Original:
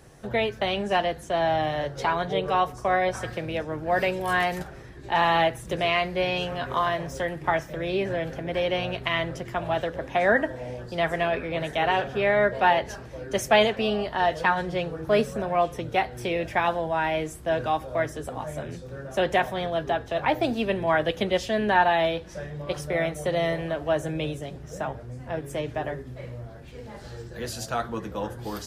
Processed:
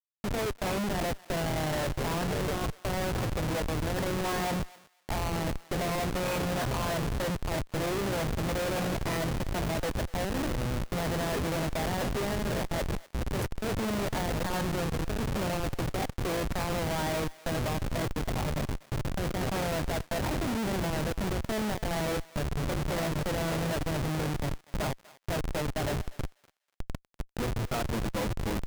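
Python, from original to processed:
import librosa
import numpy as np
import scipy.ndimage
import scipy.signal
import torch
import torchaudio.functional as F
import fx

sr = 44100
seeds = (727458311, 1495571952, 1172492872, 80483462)

p1 = fx.highpass(x, sr, hz=76.0, slope=6)
p2 = fx.band_shelf(p1, sr, hz=4900.0, db=-10.5, octaves=1.7)
p3 = fx.notch(p2, sr, hz=2700.0, q=18.0)
p4 = fx.over_compress(p3, sr, threshold_db=-28.0, ratio=-1.0)
p5 = fx.add_hum(p4, sr, base_hz=50, snr_db=22)
p6 = fx.vibrato(p5, sr, rate_hz=1.4, depth_cents=18.0)
p7 = fx.schmitt(p6, sr, flips_db=-29.0)
y = p7 + fx.echo_thinned(p7, sr, ms=245, feedback_pct=20, hz=1000.0, wet_db=-18.0, dry=0)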